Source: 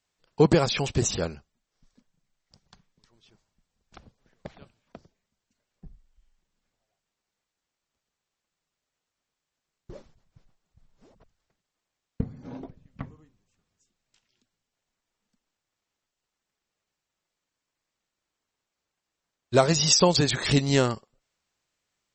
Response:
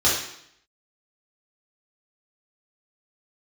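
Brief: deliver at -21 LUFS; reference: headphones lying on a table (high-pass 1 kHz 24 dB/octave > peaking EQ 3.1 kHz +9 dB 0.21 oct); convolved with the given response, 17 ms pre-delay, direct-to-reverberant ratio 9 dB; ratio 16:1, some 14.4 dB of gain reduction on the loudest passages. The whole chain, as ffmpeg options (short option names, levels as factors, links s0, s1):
-filter_complex "[0:a]acompressor=threshold=0.0398:ratio=16,asplit=2[s0][s1];[1:a]atrim=start_sample=2205,adelay=17[s2];[s1][s2]afir=irnorm=-1:irlink=0,volume=0.0531[s3];[s0][s3]amix=inputs=2:normalize=0,highpass=f=1000:w=0.5412,highpass=f=1000:w=1.3066,equalizer=f=3100:t=o:w=0.21:g=9,volume=4.73"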